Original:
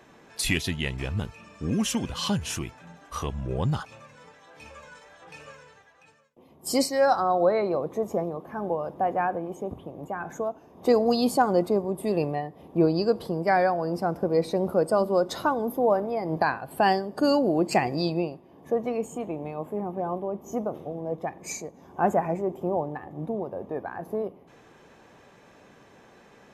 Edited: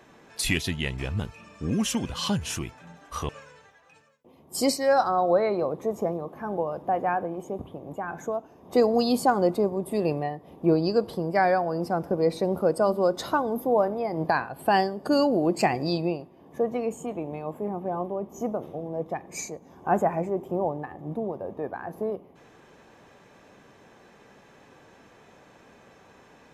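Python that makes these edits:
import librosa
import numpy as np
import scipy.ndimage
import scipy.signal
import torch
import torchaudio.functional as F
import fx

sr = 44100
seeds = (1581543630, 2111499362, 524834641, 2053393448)

y = fx.edit(x, sr, fx.cut(start_s=3.29, length_s=2.12), tone=tone)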